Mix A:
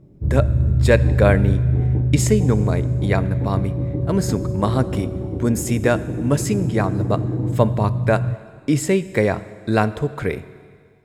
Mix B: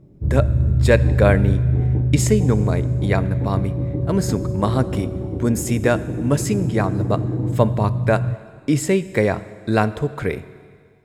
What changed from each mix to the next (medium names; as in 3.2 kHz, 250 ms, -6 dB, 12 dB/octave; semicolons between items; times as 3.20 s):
no change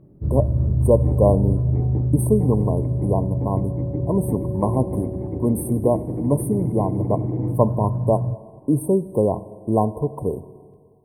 speech: add brick-wall FIR band-stop 1.1–8.4 kHz; master: add bass shelf 120 Hz -4 dB